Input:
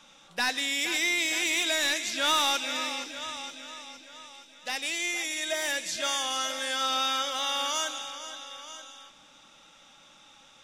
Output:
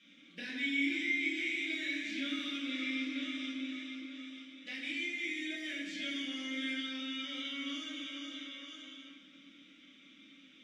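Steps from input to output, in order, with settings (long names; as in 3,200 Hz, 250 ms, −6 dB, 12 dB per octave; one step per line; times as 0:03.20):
downward compressor, threshold −33 dBFS, peak gain reduction 10.5 dB
formant filter i
convolution reverb RT60 1.7 s, pre-delay 7 ms, DRR −8.5 dB
level +3.5 dB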